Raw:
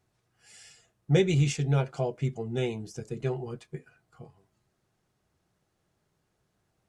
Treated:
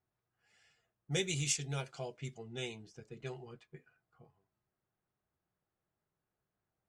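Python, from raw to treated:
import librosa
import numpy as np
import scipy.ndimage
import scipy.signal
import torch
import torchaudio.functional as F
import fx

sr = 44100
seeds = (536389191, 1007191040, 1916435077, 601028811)

y = fx.env_lowpass(x, sr, base_hz=1300.0, full_db=-21.0)
y = F.preemphasis(torch.from_numpy(y), 0.9).numpy()
y = y * librosa.db_to_amplitude(5.5)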